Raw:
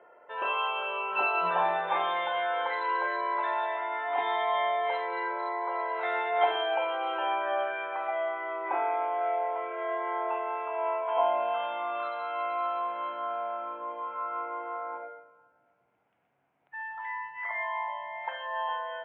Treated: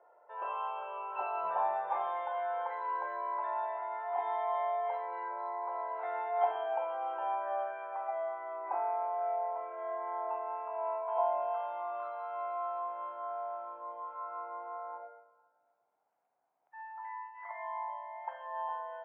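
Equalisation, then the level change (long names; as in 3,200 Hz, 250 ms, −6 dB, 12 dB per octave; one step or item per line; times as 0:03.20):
resonant band-pass 800 Hz, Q 1.8
high-frequency loss of the air 64 metres
−3.0 dB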